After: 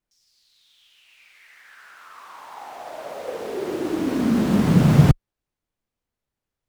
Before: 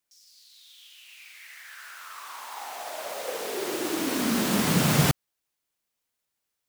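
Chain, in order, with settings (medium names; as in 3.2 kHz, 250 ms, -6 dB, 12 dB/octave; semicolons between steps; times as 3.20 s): tilt EQ -3.5 dB/octave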